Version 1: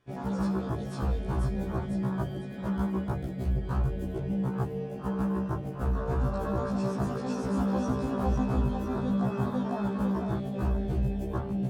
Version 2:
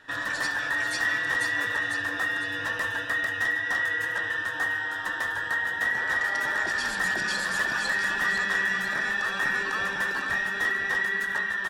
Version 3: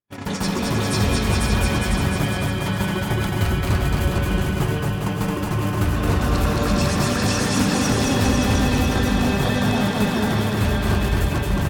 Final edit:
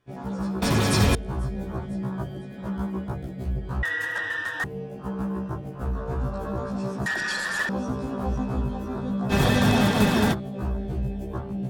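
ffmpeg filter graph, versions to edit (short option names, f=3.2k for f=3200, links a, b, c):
-filter_complex "[2:a]asplit=2[a][b];[1:a]asplit=2[c][d];[0:a]asplit=5[e][f][g][h][i];[e]atrim=end=0.622[j];[a]atrim=start=0.618:end=1.152[k];[f]atrim=start=1.148:end=3.832[l];[c]atrim=start=3.828:end=4.642[m];[g]atrim=start=4.638:end=7.062[n];[d]atrim=start=7.058:end=7.692[o];[h]atrim=start=7.688:end=9.33[p];[b]atrim=start=9.29:end=10.35[q];[i]atrim=start=10.31[r];[j][k]acrossfade=d=0.004:c1=hsin:c2=hsin[s];[s][l]acrossfade=d=0.004:c1=hsin:c2=hsin[t];[t][m]acrossfade=d=0.004:c1=hsin:c2=hsin[u];[u][n]acrossfade=d=0.004:c1=hsin:c2=hsin[v];[v][o]acrossfade=d=0.004:c1=hsin:c2=hsin[w];[w][p]acrossfade=d=0.004:c1=hsin:c2=hsin[x];[x][q]acrossfade=d=0.04:c1=tri:c2=tri[y];[y][r]acrossfade=d=0.04:c1=tri:c2=tri"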